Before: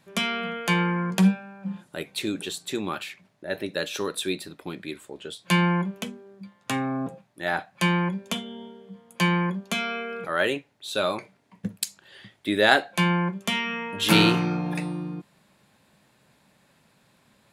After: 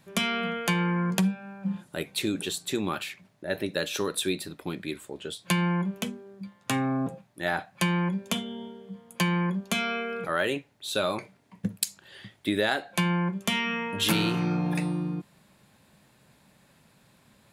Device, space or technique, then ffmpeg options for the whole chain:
ASMR close-microphone chain: -af "lowshelf=f=160:g=6,acompressor=threshold=0.0794:ratio=6,highshelf=f=9200:g=5"

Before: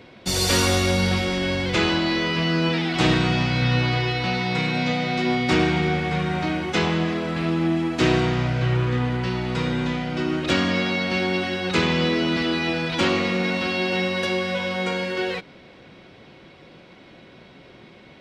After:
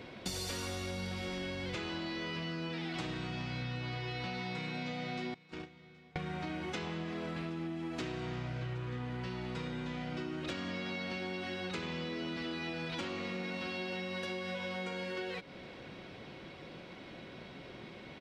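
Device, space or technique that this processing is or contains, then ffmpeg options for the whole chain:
serial compression, leveller first: -filter_complex "[0:a]asettb=1/sr,asplit=3[s0][s1][s2];[s0]atrim=end=5.344[s3];[s1]atrim=start=5.34:end=6.16,asetpts=PTS-STARTPTS,afade=t=in:d=0.004:c=qsin,afade=t=out:st=0.816:d=0.004:c=qsin,agate=range=0.0141:threshold=0.2:ratio=16:detection=peak[s4];[s2]atrim=start=6.156[s5];[s3][s4]acrossfade=d=0.004:c1=hsin:c2=qsin[s6];[s6][s5]acrossfade=d=0.004:c1=qsin:c2=hsin,acompressor=threshold=0.0708:ratio=2.5,acompressor=threshold=0.0178:ratio=6,aecho=1:1:772:0.075,volume=0.794"

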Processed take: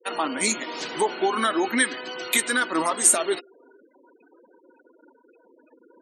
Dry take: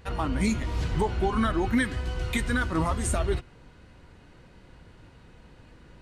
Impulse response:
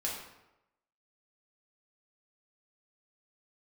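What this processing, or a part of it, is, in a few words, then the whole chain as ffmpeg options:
compressed reverb return: -filter_complex "[0:a]asplit=2[s0][s1];[1:a]atrim=start_sample=2205[s2];[s1][s2]afir=irnorm=-1:irlink=0,acompressor=threshold=0.02:ratio=12,volume=0.282[s3];[s0][s3]amix=inputs=2:normalize=0,highpass=f=290:w=0.5412,highpass=f=290:w=1.3066,afftfilt=real='re*gte(hypot(re,im),0.00562)':imag='im*gte(hypot(re,im),0.00562)':win_size=1024:overlap=0.75,aemphasis=mode=production:type=75kf,volume=1.58"

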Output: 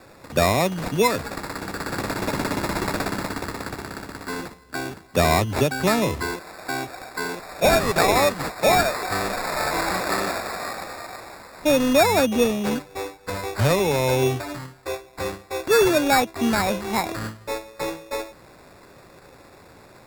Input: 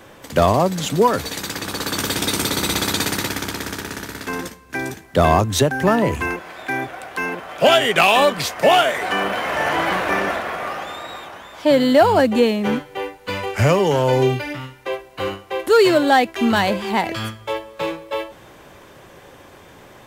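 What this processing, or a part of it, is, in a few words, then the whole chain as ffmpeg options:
crushed at another speed: -af "asetrate=35280,aresample=44100,acrusher=samples=18:mix=1:aa=0.000001,asetrate=55125,aresample=44100,volume=0.631"

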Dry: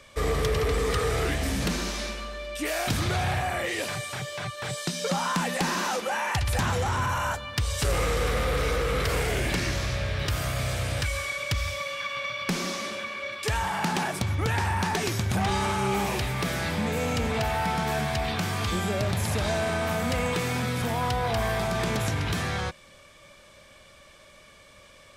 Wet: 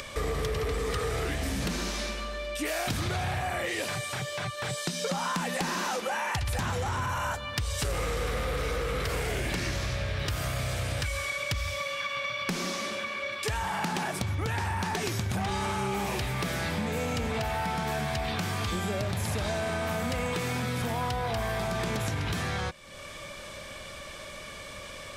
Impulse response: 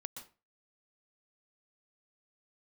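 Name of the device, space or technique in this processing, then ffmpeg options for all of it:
upward and downward compression: -af "acompressor=mode=upward:threshold=0.0282:ratio=2.5,acompressor=threshold=0.0447:ratio=6"

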